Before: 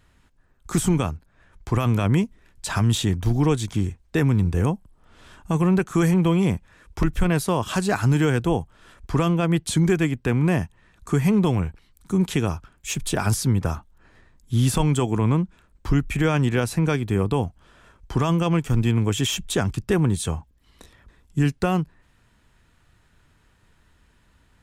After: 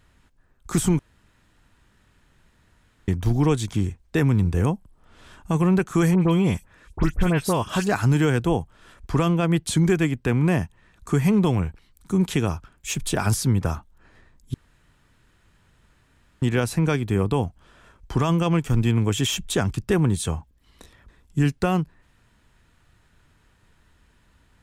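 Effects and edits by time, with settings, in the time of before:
0:00.99–0:03.08: fill with room tone
0:06.15–0:07.87: all-pass dispersion highs, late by 69 ms, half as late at 2,600 Hz
0:14.54–0:16.42: fill with room tone

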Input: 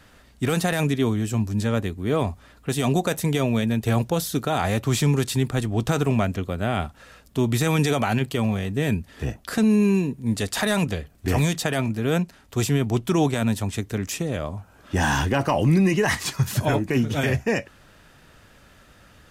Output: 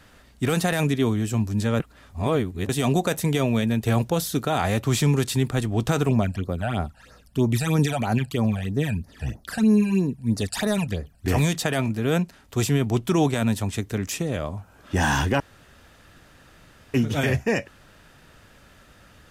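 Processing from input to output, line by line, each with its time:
0:01.80–0:02.69: reverse
0:06.09–0:11.26: all-pass phaser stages 12, 3.1 Hz, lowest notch 340–3,200 Hz
0:15.40–0:16.94: fill with room tone

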